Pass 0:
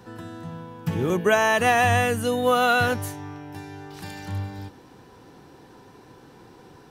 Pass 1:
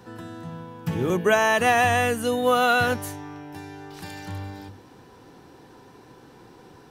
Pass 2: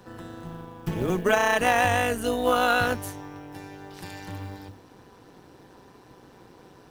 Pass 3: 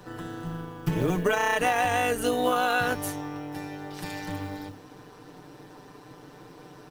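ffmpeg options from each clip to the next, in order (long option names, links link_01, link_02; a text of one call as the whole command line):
ffmpeg -i in.wav -af "bandreject=frequency=50:width_type=h:width=6,bandreject=frequency=100:width_type=h:width=6,bandreject=frequency=150:width_type=h:width=6,bandreject=frequency=200:width_type=h:width=6" out.wav
ffmpeg -i in.wav -af "acrusher=bits=7:mode=log:mix=0:aa=0.000001,tremolo=f=190:d=0.71,volume=1dB" out.wav
ffmpeg -i in.wav -af "equalizer=frequency=60:width=1.9:gain=-7.5,aecho=1:1:6.7:0.53,acompressor=threshold=-23dB:ratio=6,volume=2.5dB" out.wav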